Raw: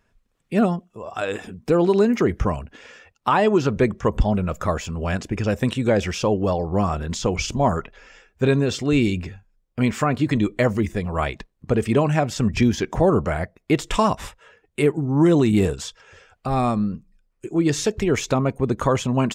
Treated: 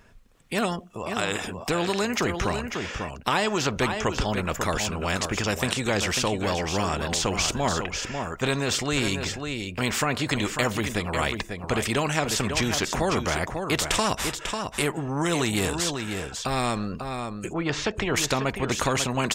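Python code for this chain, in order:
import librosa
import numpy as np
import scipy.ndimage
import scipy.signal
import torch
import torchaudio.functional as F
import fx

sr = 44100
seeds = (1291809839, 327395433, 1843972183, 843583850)

y = fx.lowpass(x, sr, hz=fx.line((17.52, 1800.0), (18.15, 3200.0)), slope=12, at=(17.52, 18.15), fade=0.02)
y = y + 10.0 ** (-11.5 / 20.0) * np.pad(y, (int(545 * sr / 1000.0), 0))[:len(y)]
y = fx.spectral_comp(y, sr, ratio=2.0)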